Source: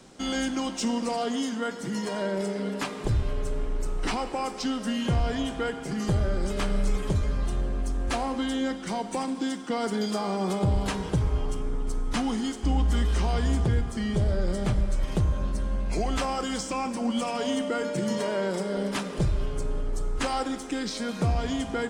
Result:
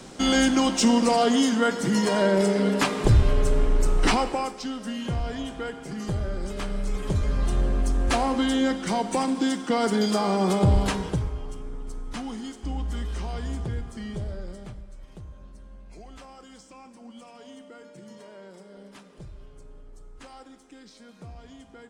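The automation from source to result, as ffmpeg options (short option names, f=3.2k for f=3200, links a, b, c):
-af "volume=16.5dB,afade=t=out:st=4.08:d=0.49:silence=0.266073,afade=t=in:st=6.86:d=0.79:silence=0.375837,afade=t=out:st=10.75:d=0.6:silence=0.266073,afade=t=out:st=14.08:d=0.75:silence=0.266073"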